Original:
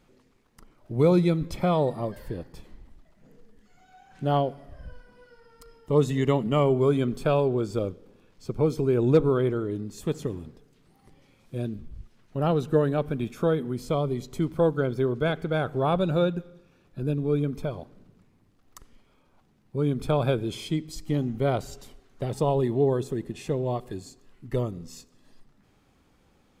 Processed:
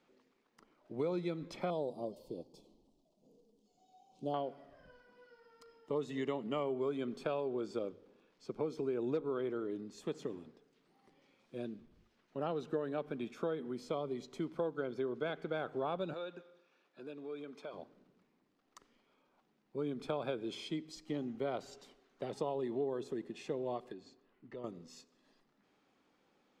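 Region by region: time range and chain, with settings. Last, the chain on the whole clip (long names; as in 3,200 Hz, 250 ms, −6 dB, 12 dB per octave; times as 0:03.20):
0:01.70–0:04.34: Butterworth band-reject 1,700 Hz, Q 0.55 + high-shelf EQ 7,800 Hz +6.5 dB
0:16.13–0:17.74: meter weighting curve A + downward compressor 2.5 to 1, threshold −34 dBFS
0:23.92–0:24.64: low-pass filter 4,600 Hz + downward compressor 2.5 to 1, threshold −37 dBFS + one half of a high-frequency compander decoder only
whole clip: three-way crossover with the lows and the highs turned down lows −22 dB, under 200 Hz, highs −16 dB, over 6,700 Hz; mains-hum notches 50/100 Hz; downward compressor 4 to 1, threshold −26 dBFS; level −7 dB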